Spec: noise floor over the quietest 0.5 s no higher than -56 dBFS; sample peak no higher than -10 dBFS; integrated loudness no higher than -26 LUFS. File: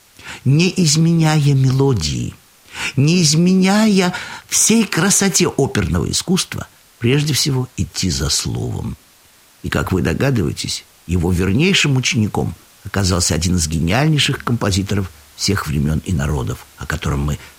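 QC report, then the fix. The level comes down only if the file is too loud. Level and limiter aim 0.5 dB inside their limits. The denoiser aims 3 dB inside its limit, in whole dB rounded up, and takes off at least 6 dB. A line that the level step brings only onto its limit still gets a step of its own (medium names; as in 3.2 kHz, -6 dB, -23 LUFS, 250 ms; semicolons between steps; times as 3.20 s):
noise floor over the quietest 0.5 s -49 dBFS: fail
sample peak -3.0 dBFS: fail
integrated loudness -16.5 LUFS: fail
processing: trim -10 dB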